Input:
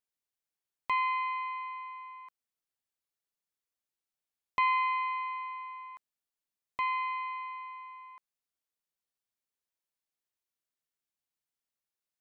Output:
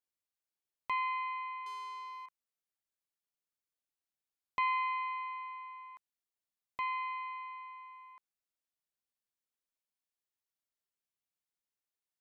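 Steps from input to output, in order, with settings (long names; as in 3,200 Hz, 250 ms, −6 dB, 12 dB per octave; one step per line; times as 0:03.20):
0:01.66–0:02.26: leveller curve on the samples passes 2
level −4.5 dB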